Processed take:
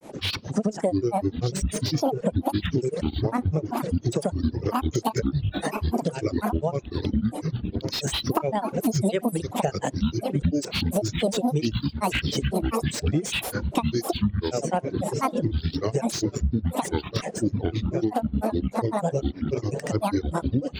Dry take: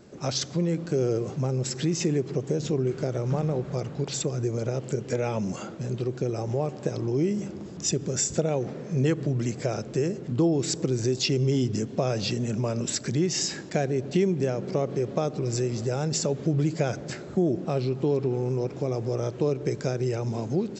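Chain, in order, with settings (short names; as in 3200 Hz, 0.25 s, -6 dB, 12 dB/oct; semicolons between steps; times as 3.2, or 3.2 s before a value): regenerating reverse delay 0.571 s, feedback 61%, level -10 dB; in parallel at -8 dB: crossover distortion -37.5 dBFS; on the sum: grains 0.138 s, grains 10/s, pitch spread up and down by 12 st; on a send at -17 dB: band-pass 1100 Hz, Q 9.9 + reverb RT60 0.35 s, pre-delay 55 ms; on the sum: compressor 5:1, threshold -28 dBFS, peak gain reduction 11 dB; reverb removal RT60 1.3 s; slew limiter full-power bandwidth 75 Hz; gain +8.5 dB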